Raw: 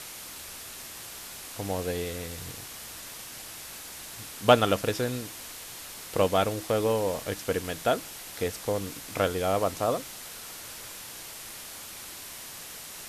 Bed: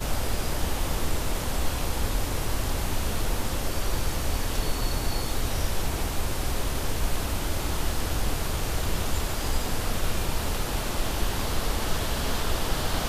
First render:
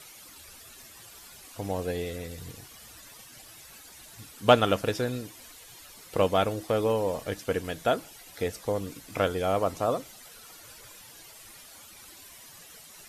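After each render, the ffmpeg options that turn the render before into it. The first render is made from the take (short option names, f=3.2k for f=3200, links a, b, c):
-af "afftdn=nr=12:nf=-43"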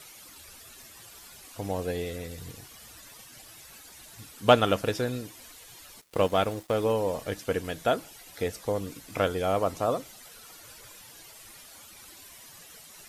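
-filter_complex "[0:a]asplit=3[a][b][c];[a]afade=t=out:st=6:d=0.02[d];[b]aeval=exprs='sgn(val(0))*max(abs(val(0))-0.00596,0)':c=same,afade=t=in:st=6:d=0.02,afade=t=out:st=6.83:d=0.02[e];[c]afade=t=in:st=6.83:d=0.02[f];[d][e][f]amix=inputs=3:normalize=0"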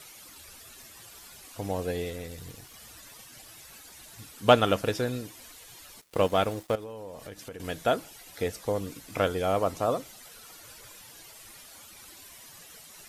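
-filter_complex "[0:a]asettb=1/sr,asplit=3[a][b][c];[a]atrim=end=2.104[d];[b]atrim=start=2.1:end=2.74,asetpts=PTS-STARTPTS,afade=t=in:d=0.004:c=qsin,afade=t=out:st=0.636:d=0.004:c=qsin,aeval=exprs='if(lt(val(0),0),0.708*val(0),val(0))':c=same[e];[c]atrim=start=2.736[f];[d][e]acrossfade=d=0.004:c1=hsin:c2=qsin[g];[g][f]acrossfade=d=0.004:c1=qsin:c2=hsin,asettb=1/sr,asplit=3[h][i][j];[h]atrim=end=6.754[k];[i]atrim=start=6.75:end=7.6,asetpts=PTS-STARTPTS,afade=t=in:d=0.004:c=qsin,afade=t=out:st=0.846:d=0.004:c=qsin,acompressor=threshold=-39dB:ratio=5:attack=3.2:release=140:knee=1:detection=peak[l];[j]atrim=start=7.596[m];[k][l]acrossfade=d=0.004:c1=hsin:c2=qsin[n];[n][m]acrossfade=d=0.004:c1=qsin:c2=hsin"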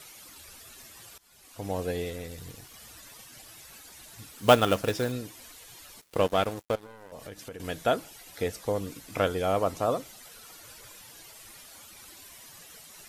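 -filter_complex "[0:a]asettb=1/sr,asplit=3[a][b][c];[a]atrim=end=4.314[d];[b]atrim=start=4.31:end=5.12,asetpts=PTS-STARTPTS,afade=t=in:d=0.004:c=qsin,afade=t=out:st=0.806:d=0.004:c=qsin,acrusher=bits=4:mode=log:mix=0:aa=0.000001[e];[c]atrim=start=5.116[f];[d][e]acrossfade=d=0.004:c1=hsin:c2=qsin[g];[g][f]acrossfade=d=0.004:c1=qsin:c2=hsin,asettb=1/sr,asplit=3[h][i][j];[h]atrim=end=6.204[k];[i]atrim=start=6.2:end=7.12,asetpts=PTS-STARTPTS,afade=t=in:d=0.004:c=qsin,afade=t=out:st=0.916:d=0.004:c=qsin,aeval=exprs='sgn(val(0))*max(abs(val(0))-0.00841,0)':c=same[l];[j]atrim=start=7.116[m];[k][l]acrossfade=d=0.004:c1=hsin:c2=qsin[n];[n][m]acrossfade=d=0.004:c1=qsin:c2=hsin,asplit=2[o][p];[o]atrim=end=1.18,asetpts=PTS-STARTPTS,afade=t=out:st=1.176:d=0.004:c=hsin:silence=0.0944061[q];[p]atrim=start=1.18,asetpts=PTS-STARTPTS,afade=t=in:d=0.59:silence=0.0944061[r];[q][r]concat=n=2:v=0:a=1"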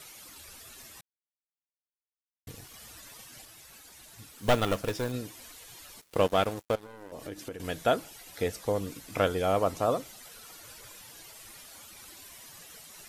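-filter_complex "[0:a]asettb=1/sr,asplit=3[a][b][c];[a]atrim=end=3.454[d];[b]atrim=start=3.45:end=5.14,asetpts=PTS-STARTPTS,afade=t=in:d=0.004:c=qsin,afade=t=out:st=1.686:d=0.004:c=qsin,aeval=exprs='(tanh(7.08*val(0)+0.6)-tanh(0.6))/7.08':c=same[e];[c]atrim=start=5.136[f];[d][e]acrossfade=d=0.004:c1=hsin:c2=qsin[g];[g][f]acrossfade=d=0.004:c1=qsin:c2=hsin,asettb=1/sr,asplit=3[h][i][j];[h]atrim=end=6.934[k];[i]atrim=start=6.93:end=7.54,asetpts=PTS-STARTPTS,afade=t=in:d=0.004:c=qsin,afade=t=out:st=0.606:d=0.004:c=qsin,equalizer=f=320:t=o:w=0.48:g=10.5[l];[j]atrim=start=7.536[m];[k][l]acrossfade=d=0.004:c1=hsin:c2=qsin[n];[n][m]acrossfade=d=0.004:c1=qsin:c2=hsin,asplit=3[o][p][q];[o]atrim=end=1.01,asetpts=PTS-STARTPTS,afade=t=out:st=1.006:d=0.004:c=hsin[r];[p]atrim=start=1.01:end=2.47,asetpts=PTS-STARTPTS,volume=0[s];[q]atrim=start=2.47,asetpts=PTS-STARTPTS,afade=t=in:d=0.004:c=hsin[t];[r][s][t]concat=n=3:v=0:a=1"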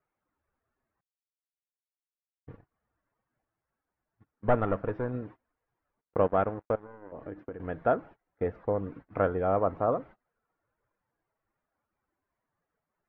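-af "lowpass=f=1.6k:w=0.5412,lowpass=f=1.6k:w=1.3066,agate=range=-27dB:threshold=-46dB:ratio=16:detection=peak"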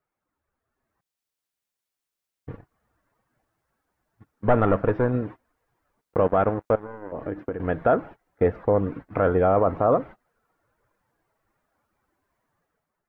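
-af "alimiter=limit=-19.5dB:level=0:latency=1:release=16,dynaudnorm=f=660:g=3:m=10dB"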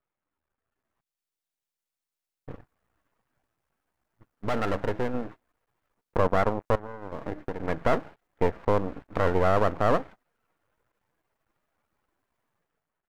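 -af "aeval=exprs='max(val(0),0)':c=same"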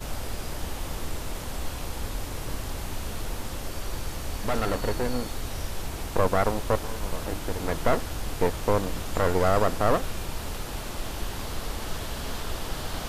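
-filter_complex "[1:a]volume=-5.5dB[a];[0:a][a]amix=inputs=2:normalize=0"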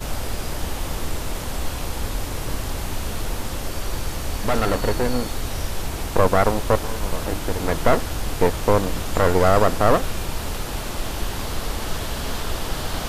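-af "volume=6dB"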